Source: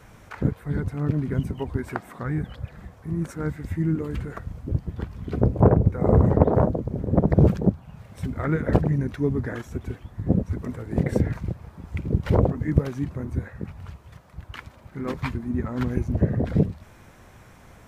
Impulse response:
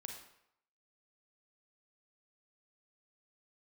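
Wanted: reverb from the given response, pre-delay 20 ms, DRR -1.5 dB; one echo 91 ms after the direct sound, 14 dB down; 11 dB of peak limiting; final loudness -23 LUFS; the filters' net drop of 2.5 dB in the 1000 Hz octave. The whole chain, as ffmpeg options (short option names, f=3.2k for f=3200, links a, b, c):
-filter_complex "[0:a]equalizer=f=1k:t=o:g=-3.5,alimiter=limit=-12.5dB:level=0:latency=1,aecho=1:1:91:0.2,asplit=2[a][b];[1:a]atrim=start_sample=2205,adelay=20[c];[b][c]afir=irnorm=-1:irlink=0,volume=5dB[d];[a][d]amix=inputs=2:normalize=0,volume=0.5dB"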